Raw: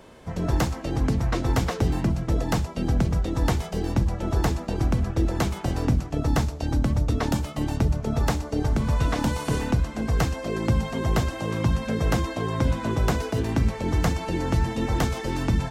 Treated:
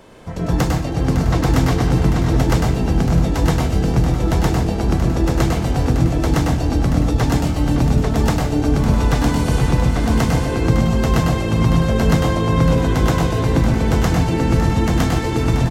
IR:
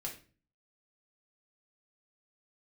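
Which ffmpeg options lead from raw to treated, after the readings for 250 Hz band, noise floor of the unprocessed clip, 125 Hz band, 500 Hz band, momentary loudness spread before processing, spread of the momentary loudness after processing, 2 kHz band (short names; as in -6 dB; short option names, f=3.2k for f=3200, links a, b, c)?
+8.5 dB, -37 dBFS, +8.5 dB, +8.0 dB, 3 LU, 2 LU, +7.0 dB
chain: -filter_complex "[0:a]aecho=1:1:491|556|835:0.133|0.316|0.631,asplit=2[a][b];[1:a]atrim=start_sample=2205,adelay=100[c];[b][c]afir=irnorm=-1:irlink=0,volume=-1dB[d];[a][d]amix=inputs=2:normalize=0,volume=3.5dB"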